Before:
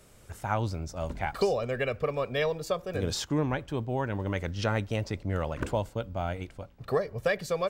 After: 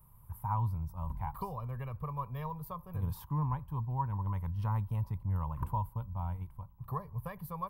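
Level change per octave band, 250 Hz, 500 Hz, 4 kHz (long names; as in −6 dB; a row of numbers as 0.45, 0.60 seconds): −8.5 dB, −20.5 dB, below −20 dB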